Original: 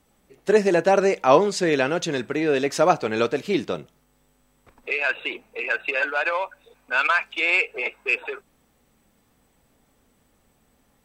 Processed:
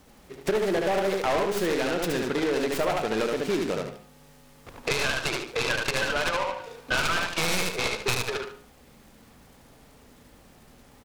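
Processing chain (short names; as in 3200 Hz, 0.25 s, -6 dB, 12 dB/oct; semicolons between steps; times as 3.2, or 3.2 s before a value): tracing distortion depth 0.16 ms; feedback echo 73 ms, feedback 24%, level -4 dB; soft clip -13 dBFS, distortion -14 dB; de-hum 103.7 Hz, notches 14; compressor 5:1, threshold -34 dBFS, peak gain reduction 16 dB; noise-modulated delay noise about 1300 Hz, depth 0.061 ms; gain +9 dB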